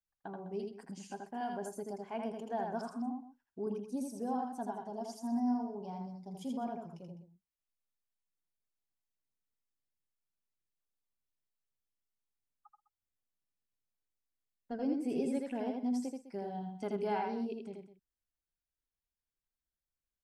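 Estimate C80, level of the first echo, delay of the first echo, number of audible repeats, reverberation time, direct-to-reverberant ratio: none, -3.5 dB, 81 ms, 3, none, none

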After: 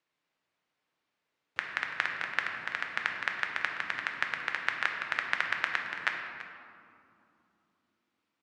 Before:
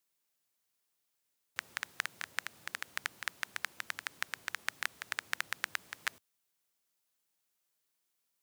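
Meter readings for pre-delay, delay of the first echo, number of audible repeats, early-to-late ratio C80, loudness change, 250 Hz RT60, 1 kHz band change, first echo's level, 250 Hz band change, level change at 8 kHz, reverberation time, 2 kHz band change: 3 ms, 0.335 s, 1, 4.5 dB, +7.0 dB, 5.0 s, +9.0 dB, -15.0 dB, +9.5 dB, -9.5 dB, 2.9 s, +8.0 dB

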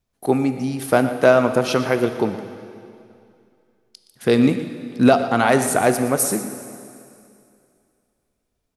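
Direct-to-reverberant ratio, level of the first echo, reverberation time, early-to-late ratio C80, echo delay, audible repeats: 7.5 dB, -13.5 dB, 2.5 s, 9.0 dB, 0.119 s, 1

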